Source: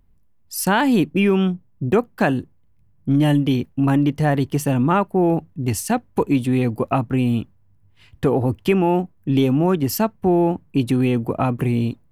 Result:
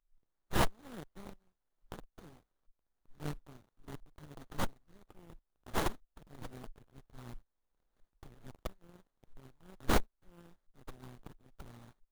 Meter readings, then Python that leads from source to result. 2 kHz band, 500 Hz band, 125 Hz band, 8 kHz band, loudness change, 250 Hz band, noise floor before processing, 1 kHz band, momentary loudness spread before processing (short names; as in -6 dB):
-17.5 dB, -24.0 dB, -25.5 dB, -17.0 dB, -20.0 dB, -28.0 dB, -55 dBFS, -19.5 dB, 6 LU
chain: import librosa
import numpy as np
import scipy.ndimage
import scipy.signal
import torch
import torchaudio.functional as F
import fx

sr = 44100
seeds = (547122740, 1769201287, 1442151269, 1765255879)

y = fx.tremolo_shape(x, sr, shape='saw_up', hz=1.5, depth_pct=90)
y = scipy.signal.sosfilt(scipy.signal.cheby2(4, 70, [110.0, 2300.0], 'bandstop', fs=sr, output='sos'), y)
y = fx.running_max(y, sr, window=17)
y = F.gain(torch.from_numpy(y), 6.5).numpy()